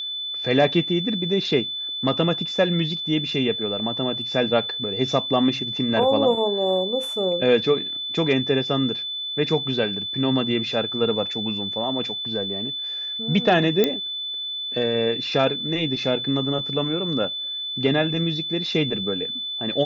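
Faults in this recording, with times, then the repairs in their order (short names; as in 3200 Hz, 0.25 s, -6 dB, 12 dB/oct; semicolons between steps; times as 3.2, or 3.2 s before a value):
tone 3500 Hz -27 dBFS
13.84 pop -6 dBFS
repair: de-click; notch 3500 Hz, Q 30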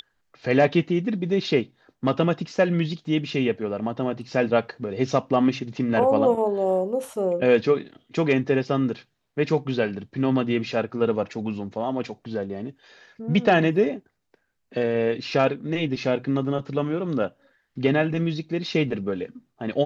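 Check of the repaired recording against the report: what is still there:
none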